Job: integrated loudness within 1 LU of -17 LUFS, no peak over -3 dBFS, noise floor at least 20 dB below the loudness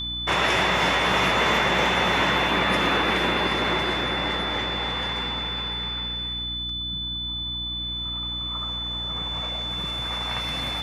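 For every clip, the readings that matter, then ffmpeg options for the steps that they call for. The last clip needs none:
hum 60 Hz; highest harmonic 300 Hz; hum level -34 dBFS; steady tone 3.5 kHz; tone level -28 dBFS; loudness -23.5 LUFS; peak level -9.0 dBFS; loudness target -17.0 LUFS
-> -af "bandreject=f=60:t=h:w=4,bandreject=f=120:t=h:w=4,bandreject=f=180:t=h:w=4,bandreject=f=240:t=h:w=4,bandreject=f=300:t=h:w=4"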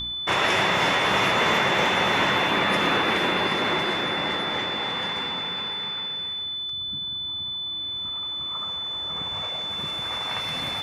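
hum not found; steady tone 3.5 kHz; tone level -28 dBFS
-> -af "bandreject=f=3500:w=30"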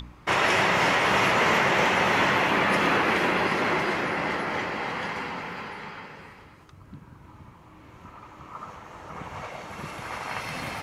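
steady tone not found; loudness -23.5 LUFS; peak level -10.0 dBFS; loudness target -17.0 LUFS
-> -af "volume=2.11"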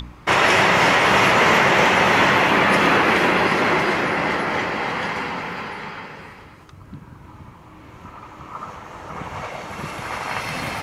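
loudness -17.0 LUFS; peak level -3.5 dBFS; noise floor -44 dBFS

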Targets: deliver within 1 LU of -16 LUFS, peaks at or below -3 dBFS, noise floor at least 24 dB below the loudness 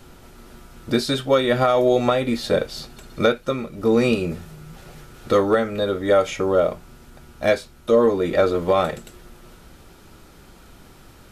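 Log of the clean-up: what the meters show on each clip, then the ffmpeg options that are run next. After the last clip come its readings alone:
loudness -20.5 LUFS; peak level -5.5 dBFS; loudness target -16.0 LUFS
-> -af "volume=1.68,alimiter=limit=0.708:level=0:latency=1"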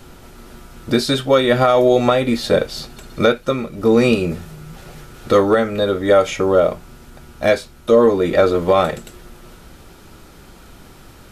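loudness -16.5 LUFS; peak level -3.0 dBFS; noise floor -43 dBFS

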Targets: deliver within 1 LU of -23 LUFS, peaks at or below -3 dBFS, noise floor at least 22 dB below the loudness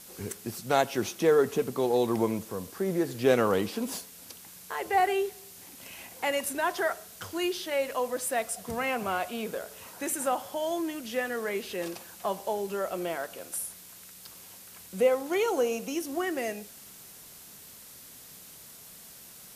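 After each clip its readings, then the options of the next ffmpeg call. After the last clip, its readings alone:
noise floor -49 dBFS; noise floor target -52 dBFS; loudness -30.0 LUFS; peak level -10.5 dBFS; loudness target -23.0 LUFS
-> -af "afftdn=nr=6:nf=-49"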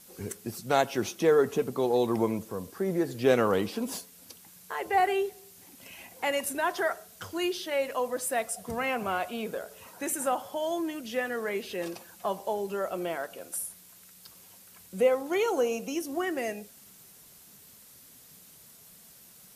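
noise floor -54 dBFS; loudness -30.0 LUFS; peak level -10.5 dBFS; loudness target -23.0 LUFS
-> -af "volume=2.24"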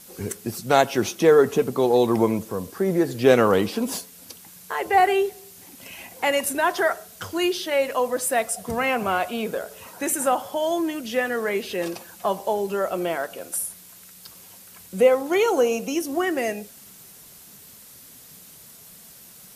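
loudness -23.0 LUFS; peak level -3.5 dBFS; noise floor -47 dBFS

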